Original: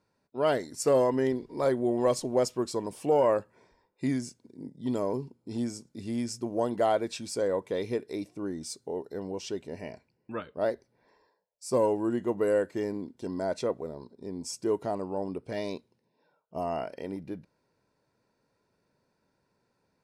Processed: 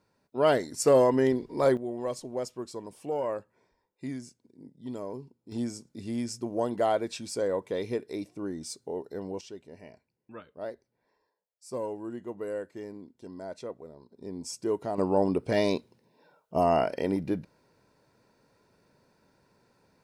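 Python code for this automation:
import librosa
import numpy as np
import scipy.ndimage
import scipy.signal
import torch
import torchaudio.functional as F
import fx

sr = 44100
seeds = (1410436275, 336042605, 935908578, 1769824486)

y = fx.gain(x, sr, db=fx.steps((0.0, 3.0), (1.77, -7.5), (5.52, -0.5), (9.41, -9.0), (14.12, -1.0), (14.98, 8.5)))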